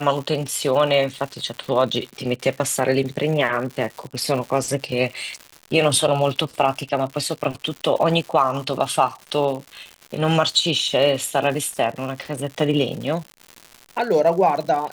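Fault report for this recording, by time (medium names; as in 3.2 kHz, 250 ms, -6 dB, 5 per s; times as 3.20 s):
crackle 180 per s -29 dBFS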